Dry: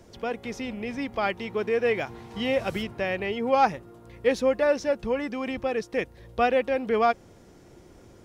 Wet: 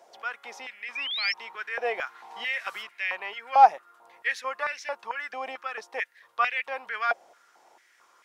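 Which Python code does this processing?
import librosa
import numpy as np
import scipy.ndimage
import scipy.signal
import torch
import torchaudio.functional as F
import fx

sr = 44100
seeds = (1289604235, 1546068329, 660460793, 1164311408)

y = fx.spec_paint(x, sr, seeds[0], shape='rise', start_s=0.95, length_s=0.39, low_hz=2300.0, high_hz=5600.0, level_db=-30.0)
y = fx.filter_held_highpass(y, sr, hz=4.5, low_hz=720.0, high_hz=2100.0)
y = F.gain(torch.from_numpy(y), -4.0).numpy()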